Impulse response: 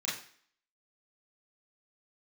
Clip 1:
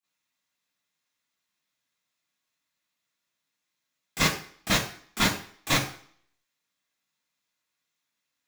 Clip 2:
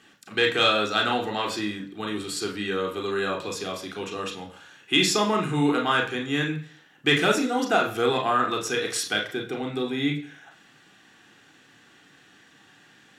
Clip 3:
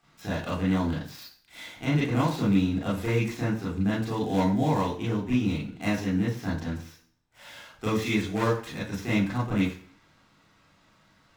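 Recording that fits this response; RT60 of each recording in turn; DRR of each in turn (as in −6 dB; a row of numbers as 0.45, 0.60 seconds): 3; 0.50, 0.50, 0.50 seconds; −15.5, 2.0, −8.0 decibels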